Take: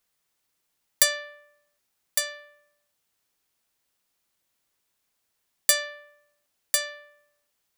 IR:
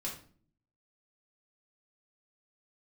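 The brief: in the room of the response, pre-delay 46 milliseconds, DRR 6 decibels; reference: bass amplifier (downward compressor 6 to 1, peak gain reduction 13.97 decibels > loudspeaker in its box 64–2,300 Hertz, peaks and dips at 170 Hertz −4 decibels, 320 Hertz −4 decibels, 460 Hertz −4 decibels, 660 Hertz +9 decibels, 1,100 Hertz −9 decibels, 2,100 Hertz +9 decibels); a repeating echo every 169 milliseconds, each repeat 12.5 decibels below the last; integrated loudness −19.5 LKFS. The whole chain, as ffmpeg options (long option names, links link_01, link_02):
-filter_complex "[0:a]aecho=1:1:169|338|507:0.237|0.0569|0.0137,asplit=2[link_01][link_02];[1:a]atrim=start_sample=2205,adelay=46[link_03];[link_02][link_03]afir=irnorm=-1:irlink=0,volume=-6.5dB[link_04];[link_01][link_04]amix=inputs=2:normalize=0,acompressor=threshold=-28dB:ratio=6,highpass=frequency=64:width=0.5412,highpass=frequency=64:width=1.3066,equalizer=frequency=170:width_type=q:width=4:gain=-4,equalizer=frequency=320:width_type=q:width=4:gain=-4,equalizer=frequency=460:width_type=q:width=4:gain=-4,equalizer=frequency=660:width_type=q:width=4:gain=9,equalizer=frequency=1100:width_type=q:width=4:gain=-9,equalizer=frequency=2100:width_type=q:width=4:gain=9,lowpass=frequency=2300:width=0.5412,lowpass=frequency=2300:width=1.3066,volume=19.5dB"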